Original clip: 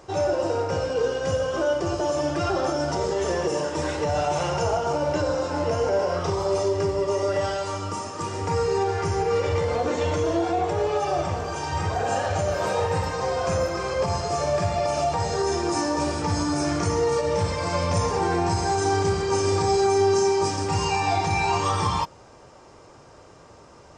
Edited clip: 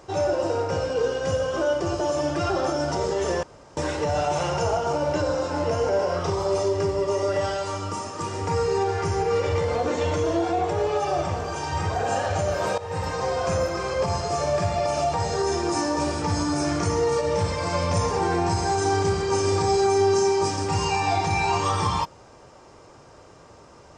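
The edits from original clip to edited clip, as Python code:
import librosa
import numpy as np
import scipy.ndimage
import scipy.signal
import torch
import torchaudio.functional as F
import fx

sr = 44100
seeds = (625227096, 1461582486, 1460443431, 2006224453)

y = fx.edit(x, sr, fx.room_tone_fill(start_s=3.43, length_s=0.34),
    fx.fade_in_from(start_s=12.78, length_s=0.32, floor_db=-17.0), tone=tone)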